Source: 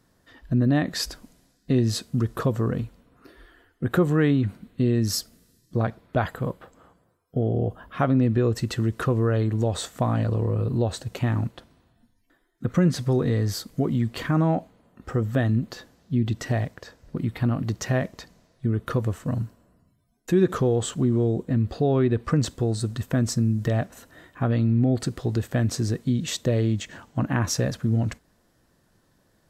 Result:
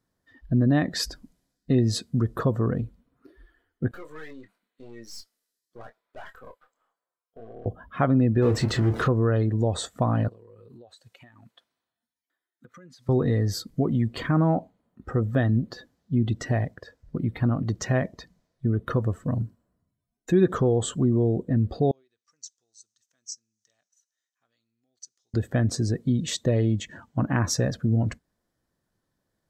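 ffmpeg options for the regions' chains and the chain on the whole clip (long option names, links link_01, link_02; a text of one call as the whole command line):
ffmpeg -i in.wav -filter_complex "[0:a]asettb=1/sr,asplit=3[link_01][link_02][link_03];[link_01]atrim=end=3.914[link_04];[link_02]atrim=start=3.91:end=7.66,asetpts=PTS-STARTPTS,afade=type=in:duration=0.004:curve=qsin,afade=type=out:start_time=3.746:duration=0.004:curve=qsin,highpass=740,aeval=exprs='(tanh(89.1*val(0)+0.75)-tanh(0.75))/89.1':channel_layout=same,asplit=2[link_05][link_06];[link_06]adelay=26,volume=-7dB[link_07];[link_05][link_07]amix=inputs=2:normalize=0,atrim=end_sample=165375[link_08];[link_03]atrim=start=7.656[link_09];[link_04][link_08]acrossfade=duration=0.004:curve1=hsin:curve2=qsin[link_10];[link_10][link_09]acrossfade=duration=0.004:curve1=qsin:curve2=hsin,asettb=1/sr,asplit=3[link_11][link_12][link_13];[link_11]atrim=end=8.424[link_14];[link_12]atrim=start=8.42:end=9.08,asetpts=PTS-STARTPTS,afade=type=in:duration=0.004:curve=qsin,afade=type=out:start_time=0.656:duration=0.004:curve=qsin,aeval=exprs='val(0)+0.5*0.0422*sgn(val(0))':channel_layout=same,highshelf=frequency=9600:gain=-10,asplit=2[link_15][link_16];[link_16]adelay=29,volume=-8dB[link_17];[link_15][link_17]amix=inputs=2:normalize=0,atrim=end_sample=29106[link_18];[link_13]atrim=start=9.076[link_19];[link_14][link_18]acrossfade=duration=0.004:curve1=hsin:curve2=qsin[link_20];[link_20][link_19]acrossfade=duration=0.004:curve1=qsin:curve2=hsin,asettb=1/sr,asplit=3[link_21][link_22][link_23];[link_21]atrim=end=10.284[link_24];[link_22]atrim=start=10.28:end=13.09,asetpts=PTS-STARTPTS,afade=type=in:duration=0.004:curve=qsin,afade=type=out:start_time=2.806:duration=0.004:curve=qsin,highpass=frequency=1400:poles=1,acompressor=threshold=-42dB:ratio=16:attack=3.2:release=140:knee=1:detection=peak[link_25];[link_23]atrim=start=13.086[link_26];[link_24][link_25]acrossfade=duration=0.004:curve1=hsin:curve2=qsin[link_27];[link_27][link_26]acrossfade=duration=0.004:curve1=qsin:curve2=hsin,asettb=1/sr,asplit=3[link_28][link_29][link_30];[link_28]atrim=end=21.914[link_31];[link_29]atrim=start=21.91:end=25.34,asetpts=PTS-STARTPTS,afade=type=in:duration=0.004:curve=qsin,afade=type=out:start_time=3.426:duration=0.004:curve=qsin,bandpass=frequency=6100:width_type=q:width=5.5,acrusher=bits=8:mode=log:mix=0:aa=0.000001[link_32];[link_30]atrim=start=25.336[link_33];[link_31][link_32]acrossfade=duration=0.004:curve1=hsin:curve2=qsin[link_34];[link_34][link_33]acrossfade=duration=0.004:curve1=qsin:curve2=hsin,afftdn=noise_reduction=14:noise_floor=-42,bandreject=frequency=2700:width=22" out.wav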